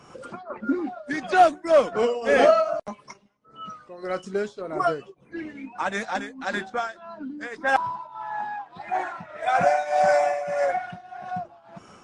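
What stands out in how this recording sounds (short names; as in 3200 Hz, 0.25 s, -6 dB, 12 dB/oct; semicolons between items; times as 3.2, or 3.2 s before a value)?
tremolo triangle 1.7 Hz, depth 85%; MP3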